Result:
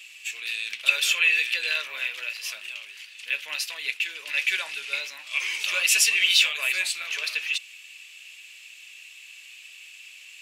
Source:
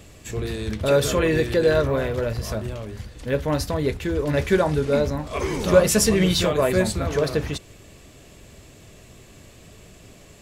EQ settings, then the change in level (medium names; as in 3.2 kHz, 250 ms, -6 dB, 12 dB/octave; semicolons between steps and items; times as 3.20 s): resonant high-pass 2.6 kHz, resonance Q 6.1; 0.0 dB